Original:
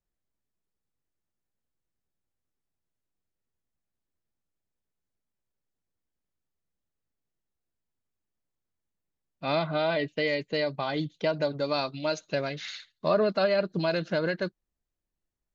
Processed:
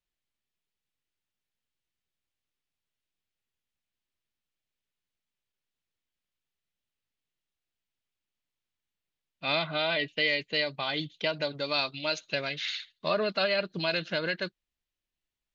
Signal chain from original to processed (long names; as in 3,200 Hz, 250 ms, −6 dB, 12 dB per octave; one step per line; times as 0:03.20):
parametric band 3,000 Hz +14 dB 1.8 octaves
level −6 dB